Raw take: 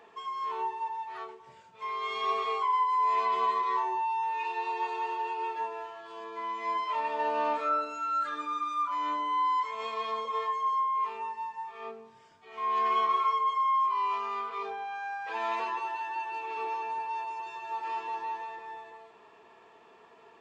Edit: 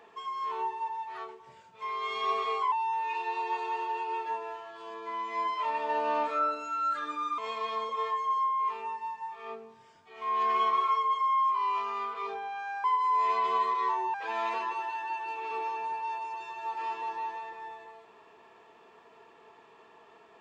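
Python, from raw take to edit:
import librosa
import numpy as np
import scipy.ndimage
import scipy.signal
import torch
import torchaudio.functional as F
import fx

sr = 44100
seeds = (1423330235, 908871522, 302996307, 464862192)

y = fx.edit(x, sr, fx.move(start_s=2.72, length_s=1.3, to_s=15.2),
    fx.cut(start_s=8.68, length_s=1.06), tone=tone)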